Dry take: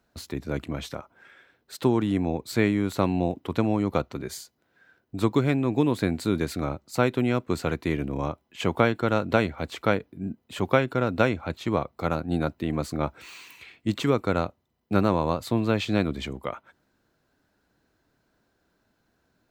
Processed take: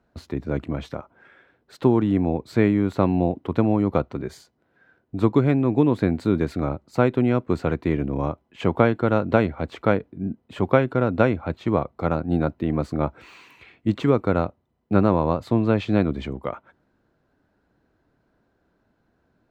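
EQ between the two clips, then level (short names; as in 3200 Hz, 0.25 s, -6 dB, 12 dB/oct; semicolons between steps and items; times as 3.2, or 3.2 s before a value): LPF 1200 Hz 6 dB/oct; +4.5 dB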